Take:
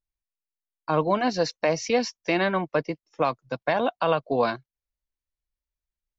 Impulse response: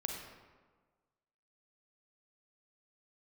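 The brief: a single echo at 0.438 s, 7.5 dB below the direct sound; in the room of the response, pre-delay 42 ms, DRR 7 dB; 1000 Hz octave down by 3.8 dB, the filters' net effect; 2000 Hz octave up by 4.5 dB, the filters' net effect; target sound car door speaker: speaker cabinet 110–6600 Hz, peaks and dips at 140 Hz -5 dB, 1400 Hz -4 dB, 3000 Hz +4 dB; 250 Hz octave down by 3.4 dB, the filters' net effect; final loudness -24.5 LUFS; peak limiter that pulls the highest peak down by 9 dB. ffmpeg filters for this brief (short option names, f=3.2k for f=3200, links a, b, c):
-filter_complex "[0:a]equalizer=f=250:t=o:g=-3.5,equalizer=f=1k:t=o:g=-6,equalizer=f=2k:t=o:g=8,alimiter=limit=-18dB:level=0:latency=1,aecho=1:1:438:0.422,asplit=2[a][b];[1:a]atrim=start_sample=2205,adelay=42[c];[b][c]afir=irnorm=-1:irlink=0,volume=-8dB[d];[a][d]amix=inputs=2:normalize=0,highpass=110,equalizer=f=140:t=q:w=4:g=-5,equalizer=f=1.4k:t=q:w=4:g=-4,equalizer=f=3k:t=q:w=4:g=4,lowpass=f=6.6k:w=0.5412,lowpass=f=6.6k:w=1.3066,volume=4.5dB"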